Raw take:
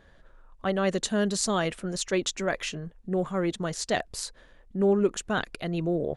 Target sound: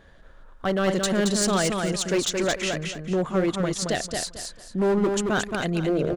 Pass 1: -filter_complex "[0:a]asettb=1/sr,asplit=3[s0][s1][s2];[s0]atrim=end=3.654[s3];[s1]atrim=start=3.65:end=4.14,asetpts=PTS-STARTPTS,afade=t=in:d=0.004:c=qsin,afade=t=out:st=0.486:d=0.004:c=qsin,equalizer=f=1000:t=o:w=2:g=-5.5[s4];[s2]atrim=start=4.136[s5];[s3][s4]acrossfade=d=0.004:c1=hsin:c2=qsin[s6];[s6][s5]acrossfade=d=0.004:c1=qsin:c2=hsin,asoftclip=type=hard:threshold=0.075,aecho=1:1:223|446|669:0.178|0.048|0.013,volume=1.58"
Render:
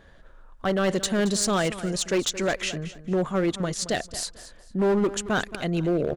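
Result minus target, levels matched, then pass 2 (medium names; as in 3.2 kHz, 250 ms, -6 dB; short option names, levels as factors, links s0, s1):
echo-to-direct -10.5 dB
-filter_complex "[0:a]asettb=1/sr,asplit=3[s0][s1][s2];[s0]atrim=end=3.654[s3];[s1]atrim=start=3.65:end=4.14,asetpts=PTS-STARTPTS,afade=t=in:d=0.004:c=qsin,afade=t=out:st=0.486:d=0.004:c=qsin,equalizer=f=1000:t=o:w=2:g=-5.5[s4];[s2]atrim=start=4.136[s5];[s3][s4]acrossfade=d=0.004:c1=hsin:c2=qsin[s6];[s6][s5]acrossfade=d=0.004:c1=qsin:c2=hsin,asoftclip=type=hard:threshold=0.075,aecho=1:1:223|446|669|892:0.596|0.161|0.0434|0.0117,volume=1.58"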